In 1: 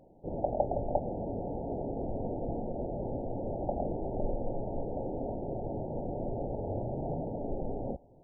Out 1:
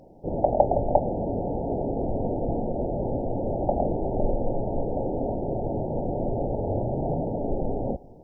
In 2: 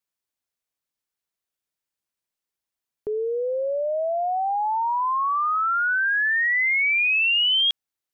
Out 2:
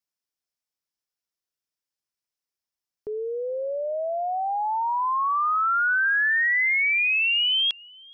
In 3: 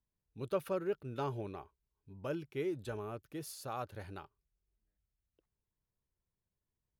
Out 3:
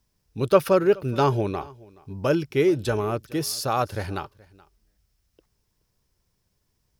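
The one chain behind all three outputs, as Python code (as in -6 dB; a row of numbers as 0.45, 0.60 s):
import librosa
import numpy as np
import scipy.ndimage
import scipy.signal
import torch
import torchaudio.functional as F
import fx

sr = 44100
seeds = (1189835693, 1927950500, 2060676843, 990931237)

y = fx.peak_eq(x, sr, hz=5300.0, db=8.5, octaves=0.34)
y = y + 10.0 ** (-23.5 / 20.0) * np.pad(y, (int(425 * sr / 1000.0), 0))[:len(y)]
y = fx.dynamic_eq(y, sr, hz=1500.0, q=0.72, threshold_db=-37.0, ratio=4.0, max_db=5)
y = y * 10.0 ** (-26 / 20.0) / np.sqrt(np.mean(np.square(y)))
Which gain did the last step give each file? +8.0, -5.0, +16.5 dB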